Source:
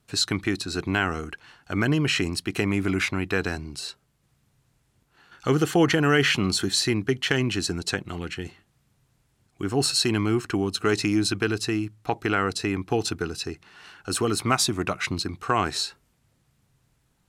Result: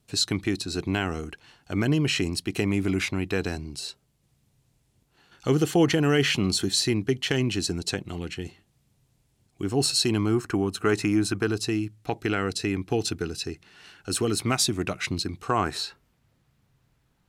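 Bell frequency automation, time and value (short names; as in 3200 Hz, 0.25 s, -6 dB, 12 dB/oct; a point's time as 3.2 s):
bell -7.5 dB 1.2 oct
10.06 s 1400 Hz
10.63 s 4500 Hz
11.24 s 4500 Hz
11.79 s 1100 Hz
15.38 s 1100 Hz
15.86 s 8900 Hz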